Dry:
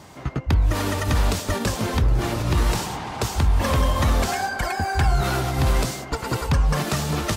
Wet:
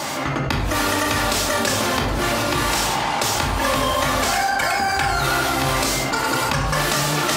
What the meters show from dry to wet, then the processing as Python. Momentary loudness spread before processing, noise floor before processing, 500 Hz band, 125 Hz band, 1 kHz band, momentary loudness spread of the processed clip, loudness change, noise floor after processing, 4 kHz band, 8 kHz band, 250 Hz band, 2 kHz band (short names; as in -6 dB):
6 LU, -36 dBFS, +4.5 dB, -5.0 dB, +7.0 dB, 2 LU, +3.5 dB, -23 dBFS, +8.5 dB, +8.0 dB, +2.0 dB, +8.0 dB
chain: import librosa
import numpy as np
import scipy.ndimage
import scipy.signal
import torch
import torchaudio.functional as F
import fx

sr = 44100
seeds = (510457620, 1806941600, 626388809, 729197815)

y = fx.highpass(x, sr, hz=720.0, slope=6)
y = fx.room_shoebox(y, sr, seeds[0], volume_m3=900.0, walls='furnished', distance_m=2.4)
y = fx.env_flatten(y, sr, amount_pct=70)
y = y * 10.0 ** (3.0 / 20.0)